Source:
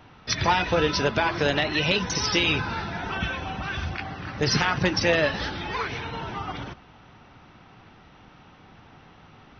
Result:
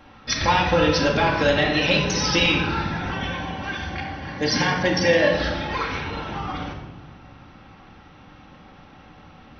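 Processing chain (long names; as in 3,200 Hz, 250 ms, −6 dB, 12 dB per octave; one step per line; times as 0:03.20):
0:03.10–0:05.33: notch comb filter 1,300 Hz
convolution reverb RT60 1.2 s, pre-delay 4 ms, DRR −0.5 dB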